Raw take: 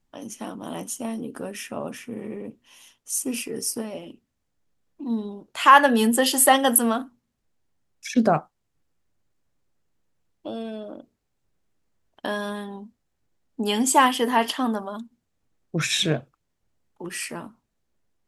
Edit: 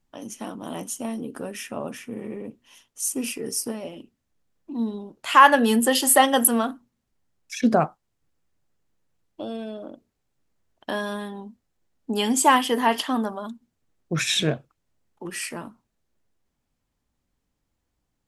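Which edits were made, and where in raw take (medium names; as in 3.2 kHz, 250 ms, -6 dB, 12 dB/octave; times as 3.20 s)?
shrink pauses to 70%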